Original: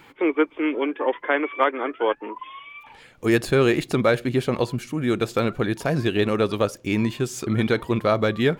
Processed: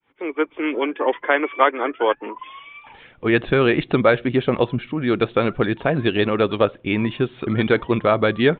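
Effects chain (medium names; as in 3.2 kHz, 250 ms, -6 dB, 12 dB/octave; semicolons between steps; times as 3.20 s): fade-in on the opening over 0.71 s; harmonic-percussive split percussive +5 dB; resampled via 8 kHz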